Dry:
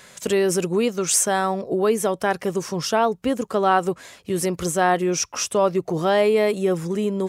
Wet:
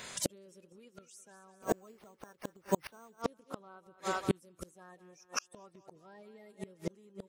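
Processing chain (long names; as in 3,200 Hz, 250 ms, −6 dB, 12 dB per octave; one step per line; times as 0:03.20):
spectral magnitudes quantised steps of 30 dB
on a send: feedback echo with a high-pass in the loop 199 ms, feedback 52%, high-pass 380 Hz, level −11.5 dB
0:01.62–0:03.22: on the sum: bad sample-rate conversion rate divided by 6×, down none, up hold
gate with flip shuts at −17 dBFS, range −37 dB
level +1 dB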